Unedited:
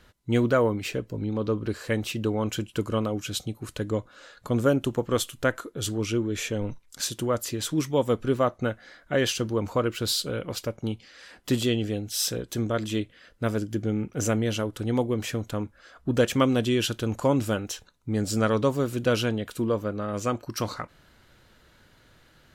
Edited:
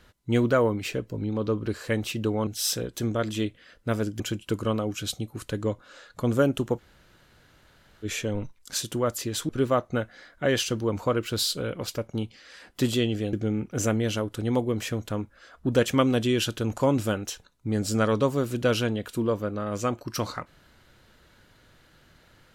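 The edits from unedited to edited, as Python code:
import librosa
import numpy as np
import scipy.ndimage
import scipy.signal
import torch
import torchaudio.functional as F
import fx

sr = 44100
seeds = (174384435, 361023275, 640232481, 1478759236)

y = fx.edit(x, sr, fx.room_tone_fill(start_s=5.06, length_s=1.25, crossfade_s=0.04),
    fx.cut(start_s=7.76, length_s=0.42),
    fx.move(start_s=12.02, length_s=1.73, to_s=2.47), tone=tone)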